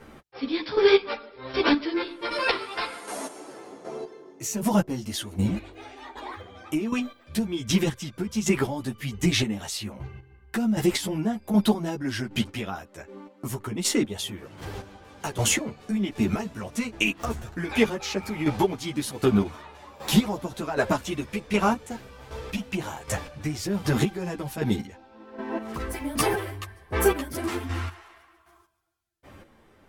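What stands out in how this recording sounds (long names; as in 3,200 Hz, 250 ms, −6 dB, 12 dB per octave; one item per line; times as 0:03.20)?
chopped level 1.3 Hz, depth 65%, duty 25%
a shimmering, thickened sound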